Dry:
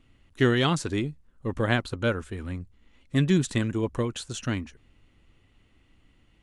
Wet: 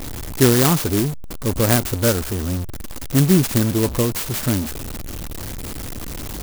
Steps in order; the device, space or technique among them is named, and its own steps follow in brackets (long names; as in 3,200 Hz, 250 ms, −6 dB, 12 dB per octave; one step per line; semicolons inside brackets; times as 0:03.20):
early CD player with a faulty converter (converter with a step at zero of −30 dBFS; converter with an unsteady clock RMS 0.14 ms)
level +6.5 dB